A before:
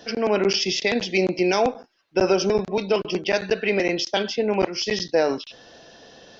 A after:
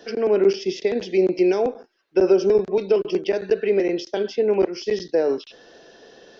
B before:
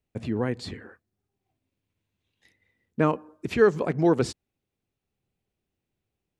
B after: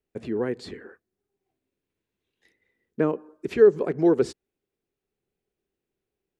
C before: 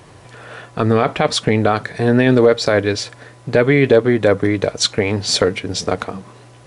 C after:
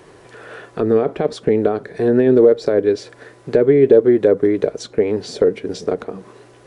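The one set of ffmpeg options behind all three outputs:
-filter_complex "[0:a]equalizer=f=100:t=o:w=0.67:g=-8,equalizer=f=400:t=o:w=0.67:g=10,equalizer=f=1600:t=o:w=0.67:g=4,acrossover=split=700[s0][s1];[s1]acompressor=threshold=0.0355:ratio=6[s2];[s0][s2]amix=inputs=2:normalize=0,volume=0.631"

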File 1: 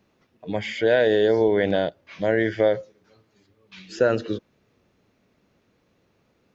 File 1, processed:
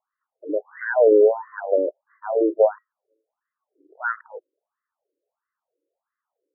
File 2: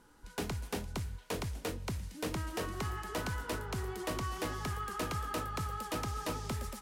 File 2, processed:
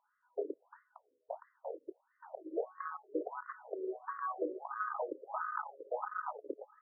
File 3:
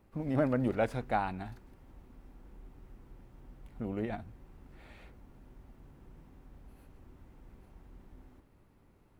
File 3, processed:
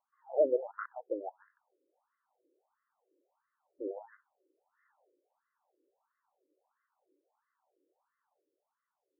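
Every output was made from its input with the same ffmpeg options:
-af "afwtdn=0.0178,afftfilt=real='re*between(b*sr/1024,400*pow(1500/400,0.5+0.5*sin(2*PI*1.5*pts/sr))/1.41,400*pow(1500/400,0.5+0.5*sin(2*PI*1.5*pts/sr))*1.41)':imag='im*between(b*sr/1024,400*pow(1500/400,0.5+0.5*sin(2*PI*1.5*pts/sr))/1.41,400*pow(1500/400,0.5+0.5*sin(2*PI*1.5*pts/sr))*1.41)':win_size=1024:overlap=0.75,volume=2"

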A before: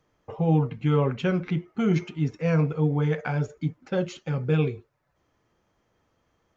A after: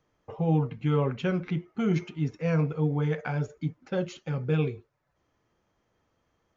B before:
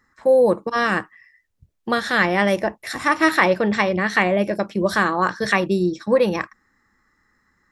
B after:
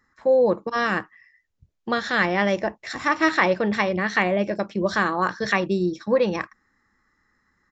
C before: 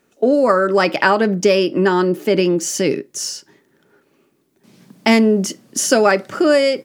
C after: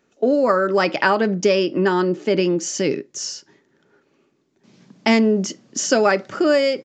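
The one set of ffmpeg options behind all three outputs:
-af "aresample=16000,aresample=44100,volume=0.708"

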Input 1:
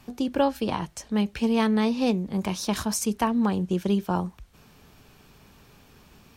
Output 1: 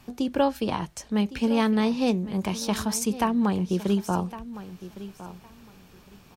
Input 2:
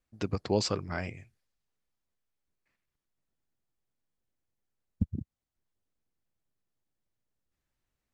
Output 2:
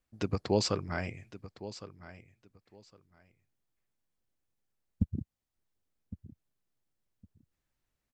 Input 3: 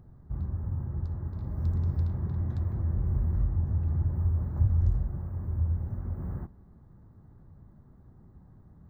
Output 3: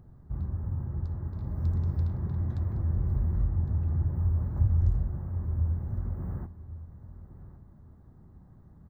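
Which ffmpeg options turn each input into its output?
-af "aecho=1:1:1110|2220:0.178|0.0338"

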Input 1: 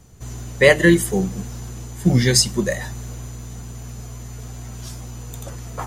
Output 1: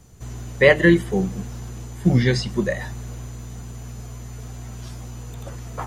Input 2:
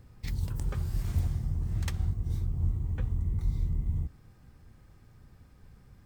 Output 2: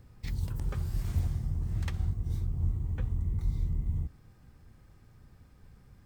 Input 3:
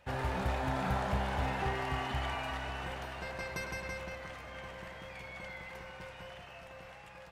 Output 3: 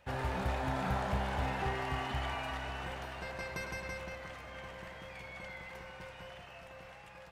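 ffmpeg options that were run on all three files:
-filter_complex "[0:a]acrossover=split=3900[s0][s1];[s1]acompressor=threshold=0.00501:ratio=4:attack=1:release=60[s2];[s0][s2]amix=inputs=2:normalize=0,volume=0.891"

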